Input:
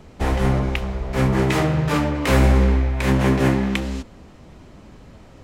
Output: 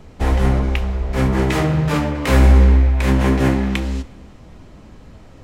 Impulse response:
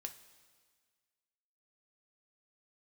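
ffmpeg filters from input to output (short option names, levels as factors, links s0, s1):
-filter_complex "[0:a]asplit=2[s0][s1];[1:a]atrim=start_sample=2205,lowshelf=f=110:g=10[s2];[s1][s2]afir=irnorm=-1:irlink=0,volume=1.12[s3];[s0][s3]amix=inputs=2:normalize=0,volume=0.631"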